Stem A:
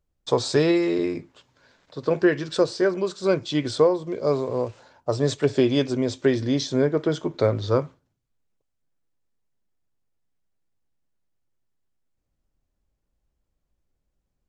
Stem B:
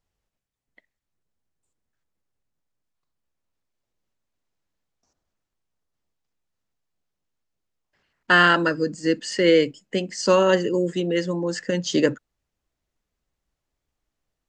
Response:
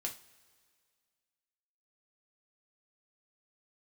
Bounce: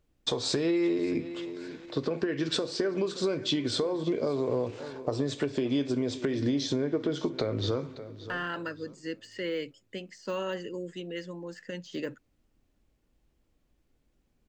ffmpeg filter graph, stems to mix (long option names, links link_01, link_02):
-filter_complex "[0:a]equalizer=frequency=280:width_type=o:width=1.6:gain=8,acompressor=threshold=-18dB:ratio=6,alimiter=limit=-16dB:level=0:latency=1:release=292,volume=0dB,asplit=3[link_01][link_02][link_03];[link_02]volume=-5dB[link_04];[link_03]volume=-16dB[link_05];[1:a]deesser=0.85,agate=range=-33dB:threshold=-42dB:ratio=3:detection=peak,volume=-15dB[link_06];[2:a]atrim=start_sample=2205[link_07];[link_04][link_07]afir=irnorm=-1:irlink=0[link_08];[link_05]aecho=0:1:574|1148|1722|2296:1|0.31|0.0961|0.0298[link_09];[link_01][link_06][link_08][link_09]amix=inputs=4:normalize=0,equalizer=frequency=2600:width_type=o:width=1.6:gain=6,acompressor=threshold=-27dB:ratio=3"